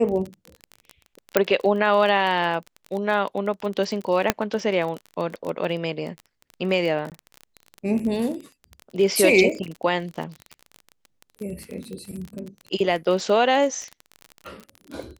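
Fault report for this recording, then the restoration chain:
crackle 28 per s -28 dBFS
1.37 s: pop -3 dBFS
4.30 s: pop -2 dBFS
7.10–7.12 s: dropout 18 ms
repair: de-click; interpolate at 7.10 s, 18 ms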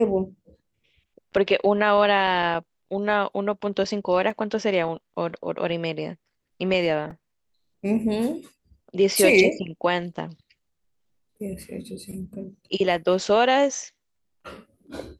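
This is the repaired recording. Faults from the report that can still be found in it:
1.37 s: pop
4.30 s: pop

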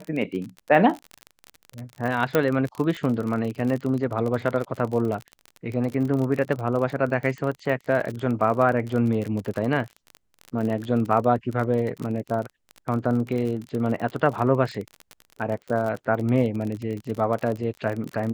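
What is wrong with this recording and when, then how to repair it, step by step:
crackle 40 per s -28 dBFS
2.35 s: pop -7 dBFS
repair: de-click

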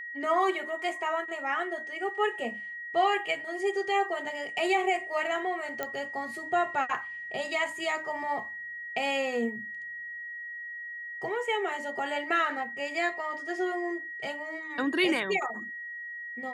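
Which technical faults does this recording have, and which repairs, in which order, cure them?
whine 1.9 kHz -37 dBFS
5.83 s: pop -17 dBFS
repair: de-click; band-stop 1.9 kHz, Q 30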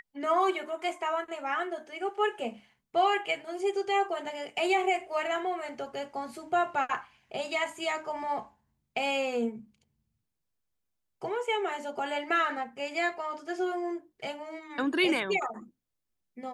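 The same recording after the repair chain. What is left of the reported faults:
nothing left

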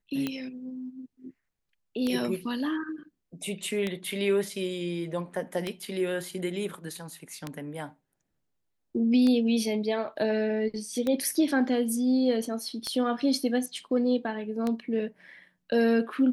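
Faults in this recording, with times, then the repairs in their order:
tick 33 1/3 rpm -16 dBFS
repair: de-click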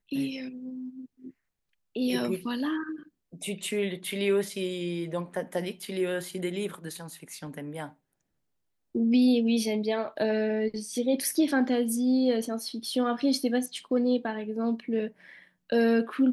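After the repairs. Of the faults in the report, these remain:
nothing left

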